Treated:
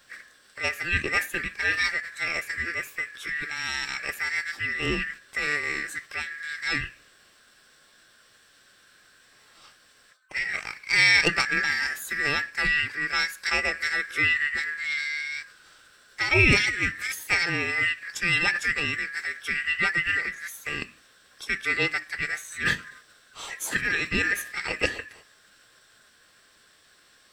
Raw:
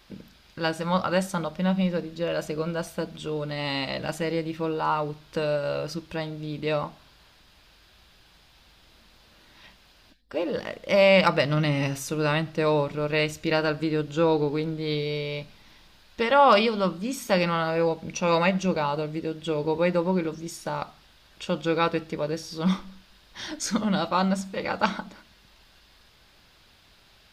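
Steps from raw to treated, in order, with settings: split-band scrambler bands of 1 kHz; formant shift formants +6 st; trim -1.5 dB

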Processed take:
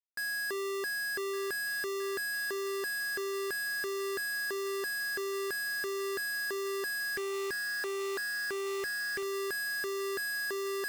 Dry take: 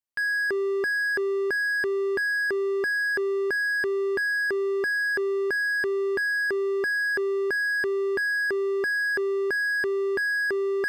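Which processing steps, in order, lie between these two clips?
Schmitt trigger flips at -31.5 dBFS; feedback echo behind a high-pass 1161 ms, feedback 58%, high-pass 1.9 kHz, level -12 dB; 7.16–9.23 s: loudspeaker Doppler distortion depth 0.33 ms; trim -9 dB

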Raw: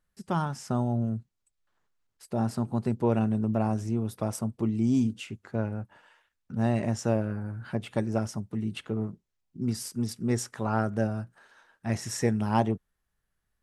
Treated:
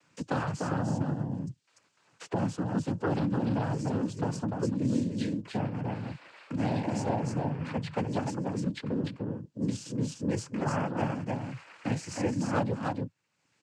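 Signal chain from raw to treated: delay 295 ms -5.5 dB; noise-vocoded speech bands 8; three bands compressed up and down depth 70%; trim -2.5 dB

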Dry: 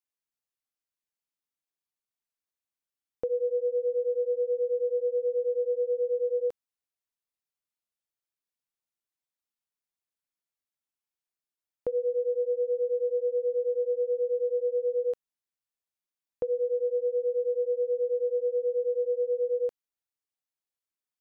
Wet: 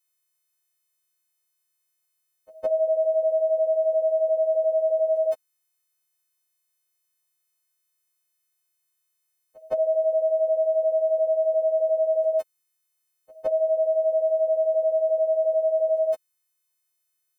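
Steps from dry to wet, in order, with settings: partials quantised in pitch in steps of 3 st; tape speed +22%; reverse echo 163 ms -23.5 dB; trim +5.5 dB

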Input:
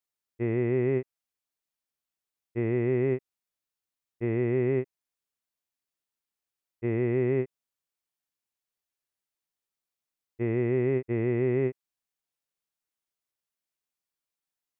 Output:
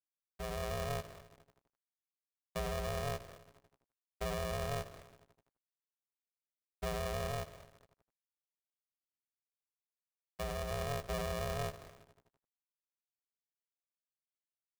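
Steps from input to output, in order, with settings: peak limiter -26.5 dBFS, peak gain reduction 9.5 dB; reverb removal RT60 0.56 s; frequency-shifting echo 208 ms, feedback 48%, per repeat -49 Hz, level -21.5 dB; low-pass that closes with the level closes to 980 Hz, closed at -38.5 dBFS; level rider gain up to 7.5 dB; bit crusher 8-bit; 7.31–10.71 s: bass shelf 120 Hz -8 dB; reverberation RT60 1.7 s, pre-delay 4 ms, DRR 17.5 dB; crossover distortion -55.5 dBFS; polarity switched at an audio rate 290 Hz; trim -8.5 dB

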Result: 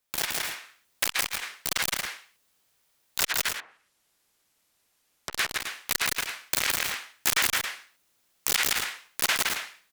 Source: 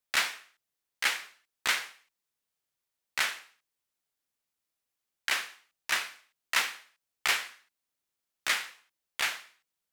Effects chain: integer overflow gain 24.5 dB; level rider gain up to 7.5 dB; 3.32–5.33 s: low-pass that closes with the level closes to 1.1 kHz, closed at -39 dBFS; loudspeakers at several distances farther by 57 m -3 dB, 95 m -12 dB; transformer saturation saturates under 3.5 kHz; trim +7 dB

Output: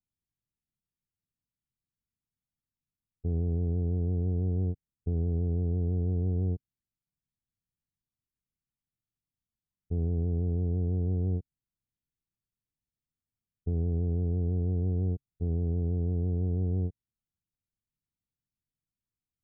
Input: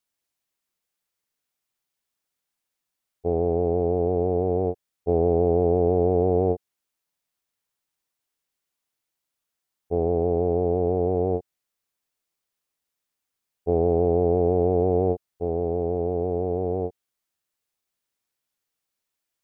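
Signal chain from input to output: peak limiter -17.5 dBFS, peak gain reduction 7.5 dB; FFT filter 140 Hz 0 dB, 260 Hz -9 dB, 600 Hz -28 dB; trim +7 dB

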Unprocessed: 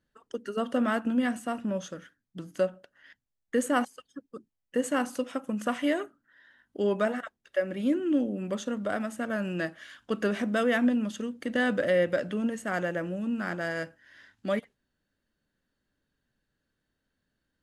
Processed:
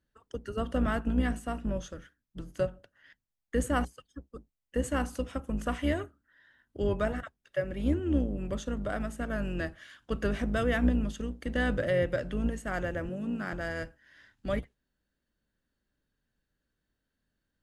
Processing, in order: octave divider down 2 oct, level +1 dB; 13.09–13.53 s: high-pass 110 Hz 24 dB/octave; trim -3.5 dB

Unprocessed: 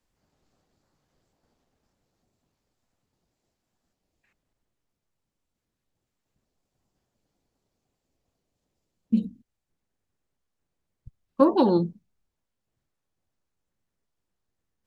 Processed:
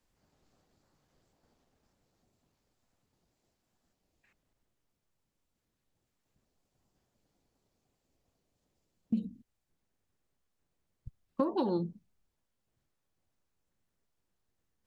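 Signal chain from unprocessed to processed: compression 4:1, threshold -29 dBFS, peak gain reduction 14.5 dB

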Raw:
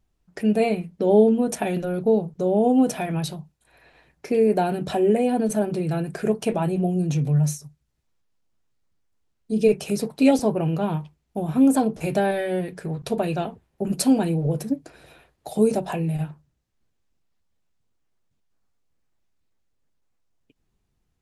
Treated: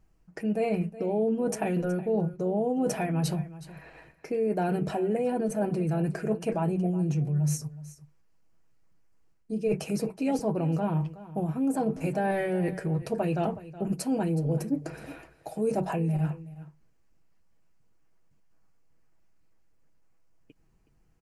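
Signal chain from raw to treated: peaking EQ 3.6 kHz -11 dB 0.37 oct; comb 6.2 ms, depth 33%; reverse; compression 6:1, threshold -31 dBFS, peak gain reduction 17.5 dB; reverse; treble shelf 5.1 kHz -6 dB; delay 370 ms -16.5 dB; trim +5.5 dB

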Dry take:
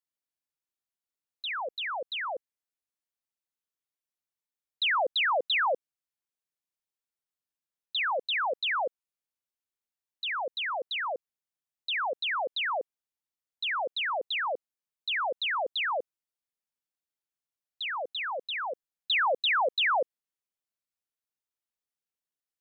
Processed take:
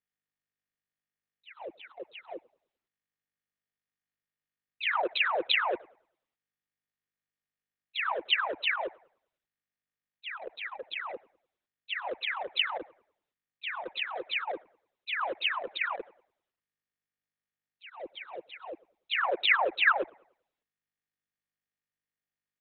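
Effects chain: local Wiener filter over 41 samples; level-controlled noise filter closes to 1.8 kHz, open at -29 dBFS; harmony voices -7 st -7 dB; bucket-brigade echo 99 ms, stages 2048, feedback 32%, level -23 dB; trim -1.5 dB; Opus 6 kbps 48 kHz

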